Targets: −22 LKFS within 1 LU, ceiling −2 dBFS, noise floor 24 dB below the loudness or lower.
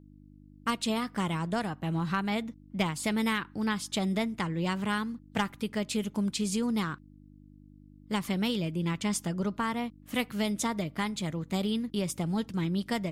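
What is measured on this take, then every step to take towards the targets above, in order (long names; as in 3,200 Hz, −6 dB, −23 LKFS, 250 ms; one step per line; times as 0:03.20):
mains hum 50 Hz; hum harmonics up to 300 Hz; level of the hum −53 dBFS; integrated loudness −31.5 LKFS; sample peak −18.0 dBFS; target loudness −22.0 LKFS
→ hum removal 50 Hz, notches 6
level +9.5 dB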